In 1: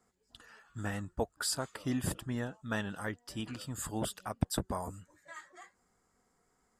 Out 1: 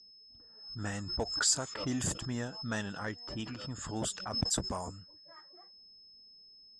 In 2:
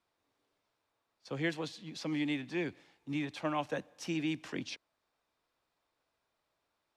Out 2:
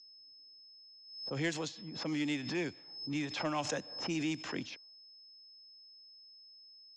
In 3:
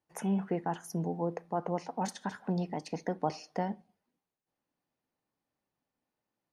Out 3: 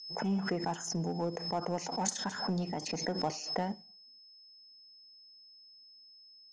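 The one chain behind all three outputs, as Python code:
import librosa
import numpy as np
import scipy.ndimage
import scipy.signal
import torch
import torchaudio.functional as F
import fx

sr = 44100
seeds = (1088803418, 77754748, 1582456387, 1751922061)

p1 = fx.env_lowpass(x, sr, base_hz=380.0, full_db=-31.5)
p2 = p1 + 10.0 ** (-60.0 / 20.0) * np.sin(2.0 * np.pi * 5200.0 * np.arange(len(p1)) / sr)
p3 = np.clip(p2, -10.0 ** (-30.5 / 20.0), 10.0 ** (-30.5 / 20.0))
p4 = p2 + (p3 * 10.0 ** (-5.0 / 20.0))
p5 = fx.lowpass_res(p4, sr, hz=6900.0, q=5.3)
p6 = fx.pre_swell(p5, sr, db_per_s=71.0)
y = p6 * 10.0 ** (-4.5 / 20.0)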